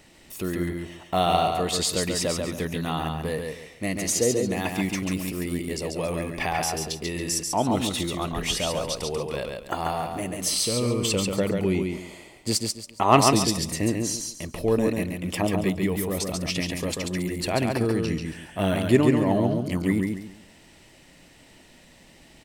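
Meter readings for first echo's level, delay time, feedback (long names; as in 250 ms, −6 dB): −4.0 dB, 139 ms, 28%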